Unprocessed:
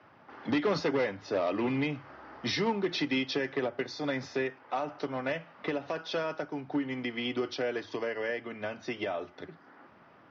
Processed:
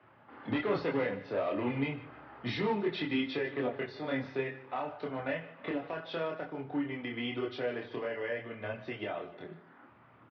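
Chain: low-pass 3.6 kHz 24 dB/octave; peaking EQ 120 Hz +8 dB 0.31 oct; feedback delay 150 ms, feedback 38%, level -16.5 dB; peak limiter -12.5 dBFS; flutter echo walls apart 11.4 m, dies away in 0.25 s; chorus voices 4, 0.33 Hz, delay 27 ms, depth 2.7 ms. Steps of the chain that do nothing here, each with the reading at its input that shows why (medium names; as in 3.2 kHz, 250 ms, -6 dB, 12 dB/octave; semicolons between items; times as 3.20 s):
peak limiter -12.5 dBFS: peak at its input -16.0 dBFS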